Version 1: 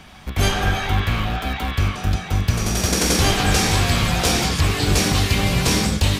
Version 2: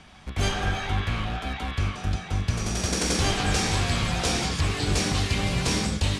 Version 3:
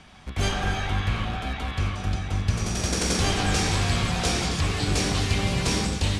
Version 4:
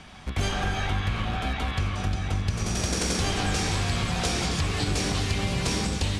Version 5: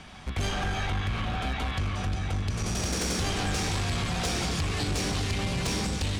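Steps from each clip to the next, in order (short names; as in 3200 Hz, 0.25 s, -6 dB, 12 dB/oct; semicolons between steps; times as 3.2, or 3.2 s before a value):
LPF 10000 Hz 24 dB/oct; gain -6.5 dB
echo with dull and thin repeats by turns 0.132 s, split 1300 Hz, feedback 62%, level -9 dB
compressor 4:1, threshold -27 dBFS, peak gain reduction 9 dB; gain +3.5 dB
soft clip -22.5 dBFS, distortion -15 dB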